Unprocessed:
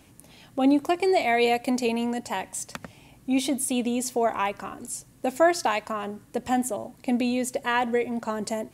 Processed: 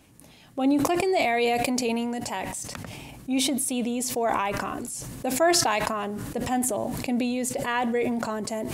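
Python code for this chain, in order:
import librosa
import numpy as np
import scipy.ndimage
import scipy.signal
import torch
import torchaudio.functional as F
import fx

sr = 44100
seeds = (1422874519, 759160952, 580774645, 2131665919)

y = fx.sustainer(x, sr, db_per_s=20.0)
y = y * 10.0 ** (-2.5 / 20.0)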